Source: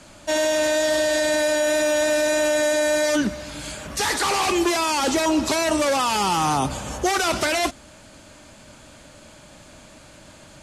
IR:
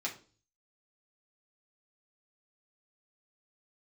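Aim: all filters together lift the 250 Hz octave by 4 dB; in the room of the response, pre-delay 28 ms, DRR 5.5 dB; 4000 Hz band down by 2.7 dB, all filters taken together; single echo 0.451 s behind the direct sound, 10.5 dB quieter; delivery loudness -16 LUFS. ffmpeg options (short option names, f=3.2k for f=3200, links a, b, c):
-filter_complex "[0:a]equalizer=f=250:t=o:g=5.5,equalizer=f=4k:t=o:g=-3.5,aecho=1:1:451:0.299,asplit=2[a][b];[1:a]atrim=start_sample=2205,adelay=28[c];[b][c]afir=irnorm=-1:irlink=0,volume=-8.5dB[d];[a][d]amix=inputs=2:normalize=0,volume=3dB"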